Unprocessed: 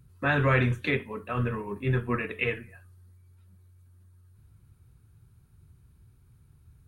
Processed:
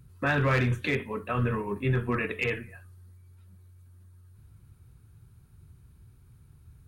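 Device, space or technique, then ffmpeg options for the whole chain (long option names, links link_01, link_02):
clipper into limiter: -af "asoftclip=type=hard:threshold=-17.5dB,alimiter=limit=-21.5dB:level=0:latency=1:release=28,volume=3dB"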